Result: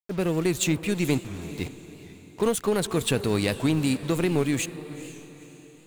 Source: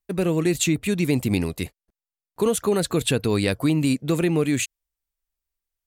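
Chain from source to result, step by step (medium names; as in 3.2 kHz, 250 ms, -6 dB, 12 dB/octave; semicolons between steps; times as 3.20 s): level-controlled noise filter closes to 630 Hz, open at -19 dBFS; 1.18–1.58 s: amplifier tone stack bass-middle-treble 10-0-1; in parallel at -7.5 dB: fuzz box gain 49 dB, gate -44 dBFS; on the sum: power-law waveshaper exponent 2; on a send: echo that smears into a reverb 473 ms, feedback 42%, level -14 dB; on the sum: warped record 78 rpm, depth 100 cents; trim -2.5 dB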